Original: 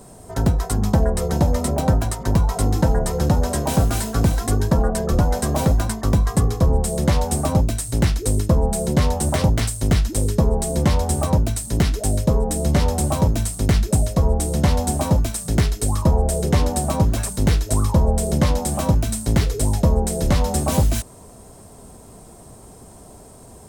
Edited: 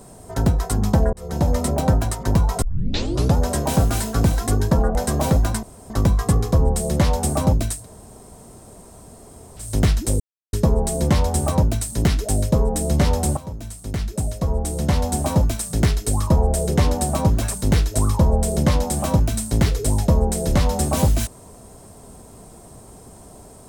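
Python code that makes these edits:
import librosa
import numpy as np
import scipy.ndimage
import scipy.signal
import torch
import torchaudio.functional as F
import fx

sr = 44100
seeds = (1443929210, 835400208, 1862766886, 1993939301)

y = fx.edit(x, sr, fx.fade_in_span(start_s=1.13, length_s=0.37),
    fx.tape_start(start_s=2.62, length_s=0.74),
    fx.cut(start_s=4.95, length_s=0.35),
    fx.insert_room_tone(at_s=5.98, length_s=0.27),
    fx.room_tone_fill(start_s=7.87, length_s=1.85, crossfade_s=0.16),
    fx.insert_silence(at_s=10.28, length_s=0.33),
    fx.fade_in_from(start_s=13.12, length_s=2.03, floor_db=-17.5), tone=tone)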